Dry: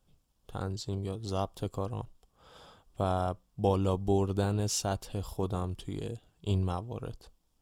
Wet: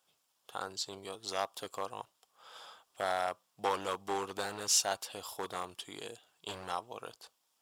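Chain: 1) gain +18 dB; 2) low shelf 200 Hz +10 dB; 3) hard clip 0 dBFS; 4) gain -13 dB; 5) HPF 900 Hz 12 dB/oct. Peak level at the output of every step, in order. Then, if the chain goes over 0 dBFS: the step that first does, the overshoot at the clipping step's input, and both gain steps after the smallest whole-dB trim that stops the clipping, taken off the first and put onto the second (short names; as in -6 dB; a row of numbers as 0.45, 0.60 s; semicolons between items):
+3.5, +8.0, 0.0, -13.0, -15.0 dBFS; step 1, 8.0 dB; step 1 +10 dB, step 4 -5 dB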